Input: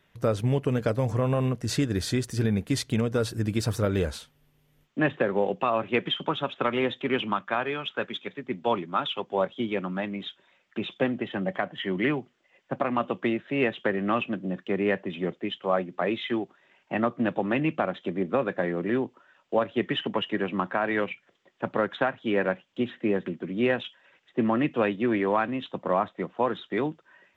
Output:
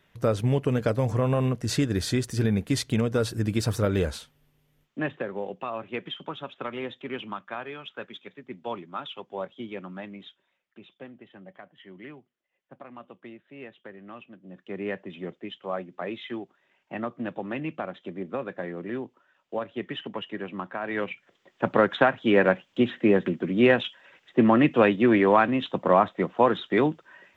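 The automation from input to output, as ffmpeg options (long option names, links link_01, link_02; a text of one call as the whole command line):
ffmpeg -i in.wav -af "volume=24.5dB,afade=type=out:start_time=4.08:duration=1.23:silence=0.354813,afade=type=out:start_time=10.11:duration=0.7:silence=0.316228,afade=type=in:start_time=14.42:duration=0.42:silence=0.266073,afade=type=in:start_time=20.8:duration=0.94:silence=0.251189" out.wav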